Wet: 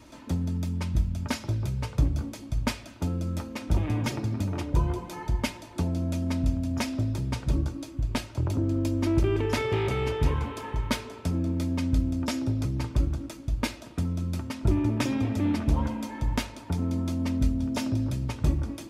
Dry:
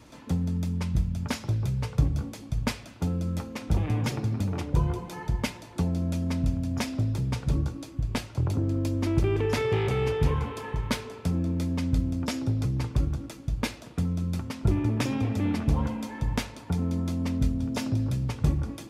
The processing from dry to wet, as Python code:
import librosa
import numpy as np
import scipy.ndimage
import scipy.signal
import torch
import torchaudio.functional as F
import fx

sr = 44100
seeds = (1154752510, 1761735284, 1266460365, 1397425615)

y = x + 0.37 * np.pad(x, (int(3.2 * sr / 1000.0), 0))[:len(x)]